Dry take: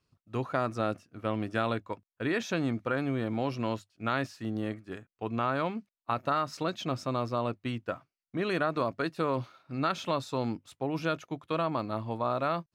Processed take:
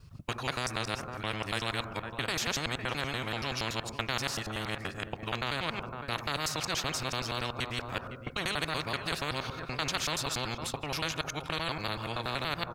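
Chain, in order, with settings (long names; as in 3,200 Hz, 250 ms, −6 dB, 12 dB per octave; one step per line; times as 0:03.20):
reversed piece by piece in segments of 95 ms
low shelf with overshoot 180 Hz +12.5 dB, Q 1.5
slap from a distant wall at 87 metres, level −20 dB
on a send at −17 dB: convolution reverb RT60 0.85 s, pre-delay 3 ms
on the sum: every bin compressed towards the loudest bin 4 to 1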